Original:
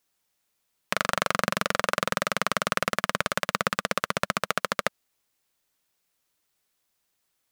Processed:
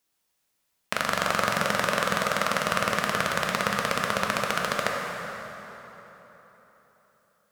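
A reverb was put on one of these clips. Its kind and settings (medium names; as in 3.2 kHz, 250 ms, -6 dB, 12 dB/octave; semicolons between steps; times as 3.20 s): plate-style reverb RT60 3.9 s, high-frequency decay 0.65×, DRR -0.5 dB; trim -1.5 dB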